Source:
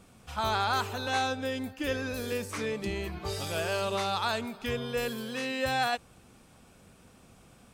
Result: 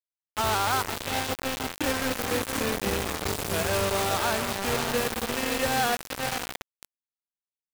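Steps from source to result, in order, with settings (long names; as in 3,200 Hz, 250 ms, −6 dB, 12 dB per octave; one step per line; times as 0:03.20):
on a send: feedback delay with all-pass diffusion 567 ms, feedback 46%, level −4.5 dB
on the sum: dynamic equaliser 3,800 Hz, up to −7 dB, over −46 dBFS, Q 0.78
0:00.94–0:01.84: phaser with its sweep stopped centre 2,900 Hz, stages 4
bit reduction 5 bits
level +3 dB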